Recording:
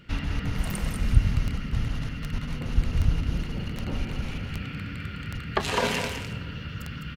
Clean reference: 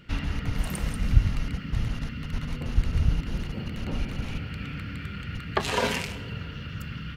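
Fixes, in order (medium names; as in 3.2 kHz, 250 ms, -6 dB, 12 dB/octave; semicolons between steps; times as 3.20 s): de-click; inverse comb 206 ms -7 dB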